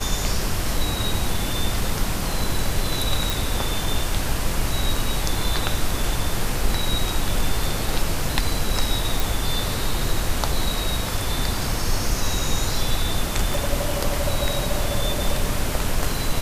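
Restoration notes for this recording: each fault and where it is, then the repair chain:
0:03.30: click
0:09.20: click
0:13.54: click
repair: click removal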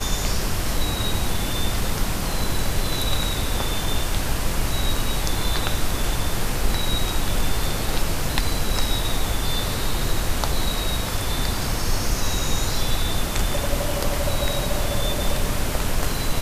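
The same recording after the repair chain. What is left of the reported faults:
0:13.54: click

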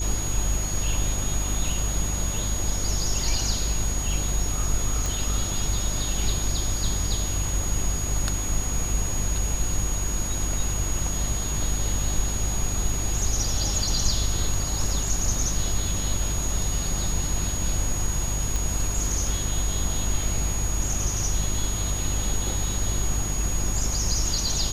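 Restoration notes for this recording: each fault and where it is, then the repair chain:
mains hum 50 Hz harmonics 8 −29 dBFS
whistle 6,700 Hz −30 dBFS
0:05.06: click
0:18.56: click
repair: click removal
notch filter 6,700 Hz, Q 30
hum removal 50 Hz, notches 8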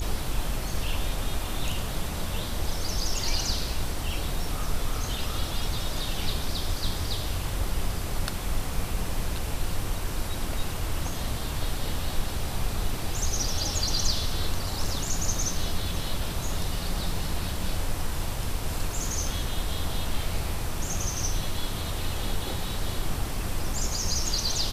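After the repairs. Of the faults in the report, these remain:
none of them is left

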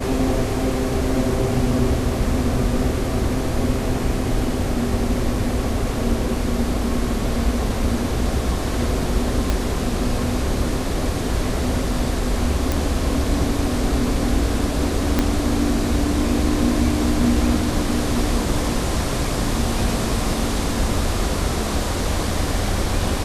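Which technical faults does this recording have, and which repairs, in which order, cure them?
0:09.50: click
0:12.72: click
0:15.19: click −4 dBFS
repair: click removal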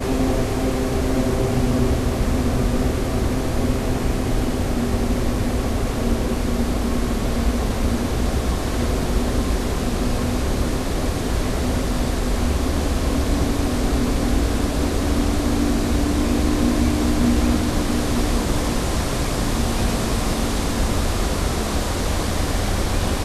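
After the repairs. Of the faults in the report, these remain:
0:09.50: click
0:15.19: click

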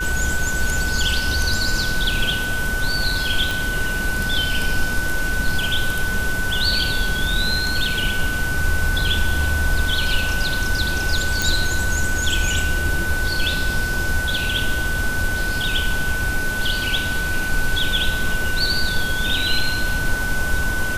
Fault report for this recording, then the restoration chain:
whistle 1,500 Hz −23 dBFS
0:03.51: click
0:11.42: click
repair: click removal
notch filter 1,500 Hz, Q 30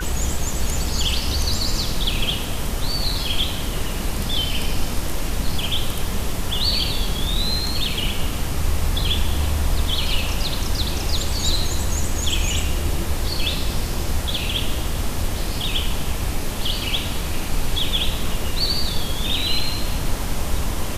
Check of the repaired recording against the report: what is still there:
none of them is left

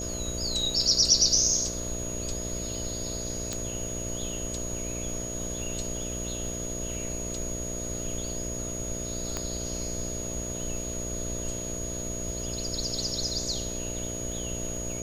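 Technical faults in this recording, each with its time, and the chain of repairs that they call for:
mains buzz 60 Hz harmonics 11 −37 dBFS
surface crackle 32 per second −38 dBFS
whistle 6,700 Hz −35 dBFS
0:03.53: click −17 dBFS
0:09.37: click −16 dBFS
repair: click removal
hum removal 60 Hz, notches 11
notch filter 6,700 Hz, Q 30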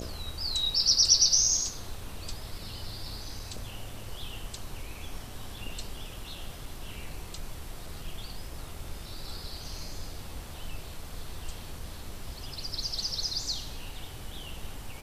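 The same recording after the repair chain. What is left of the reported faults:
0:09.37: click

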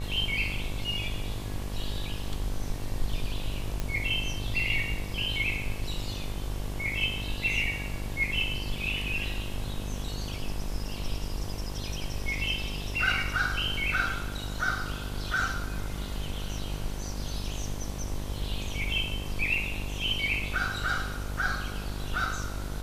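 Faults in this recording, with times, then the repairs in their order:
mains buzz 50 Hz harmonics 23 −36 dBFS
0:03.80: click −17 dBFS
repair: click removal
hum removal 50 Hz, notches 23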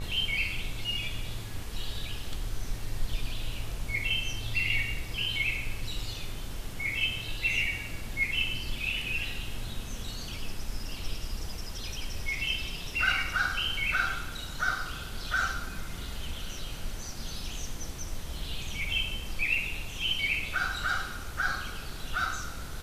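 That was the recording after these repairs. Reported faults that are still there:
none of them is left

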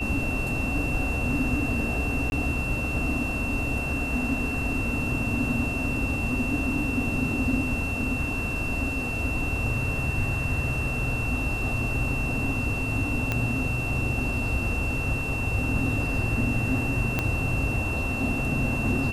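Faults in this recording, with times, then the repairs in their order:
whistle 2,700 Hz −30 dBFS
0:02.30–0:02.32: drop-out 21 ms
0:13.32: click −12 dBFS
0:17.19: click −10 dBFS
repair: click removal
notch filter 2,700 Hz, Q 30
repair the gap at 0:02.30, 21 ms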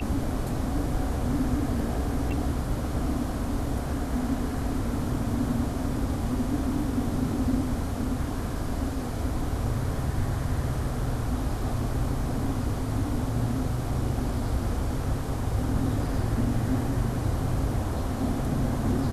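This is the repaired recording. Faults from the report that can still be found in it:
0:13.32: click
0:17.19: click

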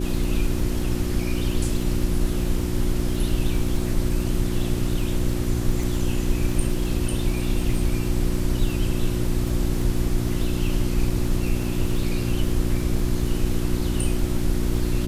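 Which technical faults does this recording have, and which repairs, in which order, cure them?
surface crackle 27 per second −29 dBFS
mains hum 60 Hz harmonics 6 −27 dBFS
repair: click removal
hum removal 60 Hz, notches 6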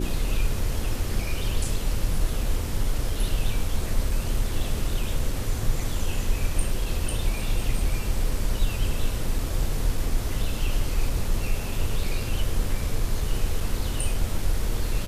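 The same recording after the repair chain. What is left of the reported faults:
none of them is left

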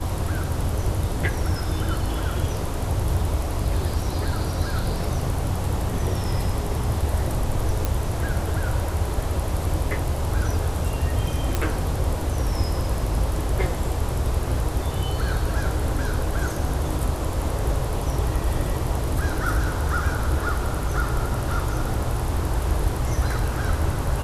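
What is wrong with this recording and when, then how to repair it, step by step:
0:07.85: click
0:11.55: click −8 dBFS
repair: click removal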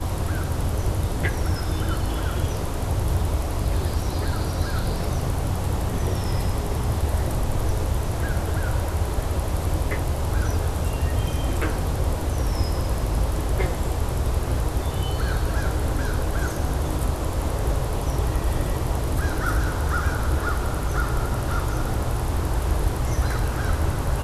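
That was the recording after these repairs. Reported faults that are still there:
none of them is left

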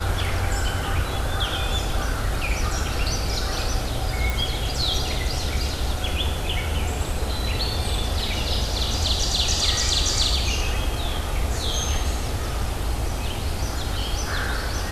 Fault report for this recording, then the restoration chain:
0:04.30: click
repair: click removal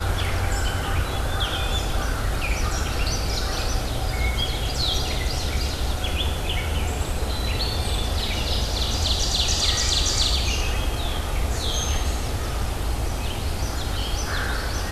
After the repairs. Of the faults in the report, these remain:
none of them is left

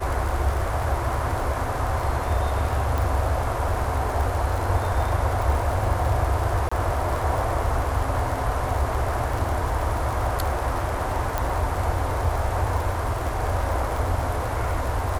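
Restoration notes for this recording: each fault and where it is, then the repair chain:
surface crackle 55 per second −27 dBFS
0:02.98: click
0:06.69–0:06.71: drop-out 25 ms
0:11.38: click −10 dBFS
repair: click removal
repair the gap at 0:06.69, 25 ms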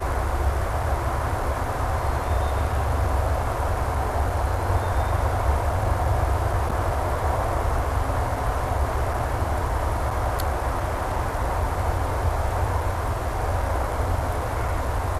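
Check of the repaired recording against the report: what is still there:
none of them is left

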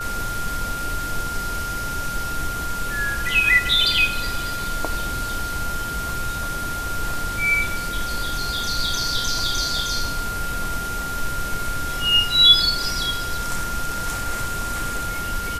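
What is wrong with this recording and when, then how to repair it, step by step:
whistle 1,400 Hz −27 dBFS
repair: notch filter 1,400 Hz, Q 30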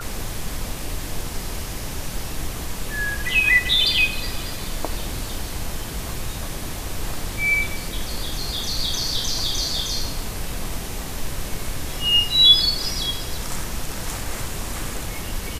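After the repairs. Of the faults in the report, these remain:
none of them is left

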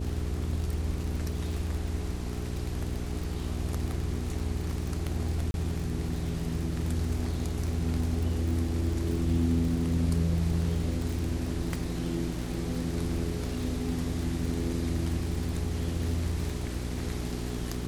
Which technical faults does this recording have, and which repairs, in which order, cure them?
surface crackle 46 per second −33 dBFS
mains hum 60 Hz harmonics 7 −35 dBFS
0:05.51–0:05.54: drop-out 31 ms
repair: click removal
hum removal 60 Hz, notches 7
repair the gap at 0:05.51, 31 ms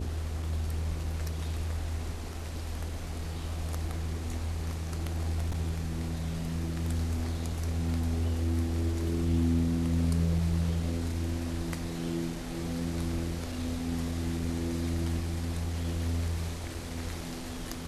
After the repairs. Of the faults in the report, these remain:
none of them is left

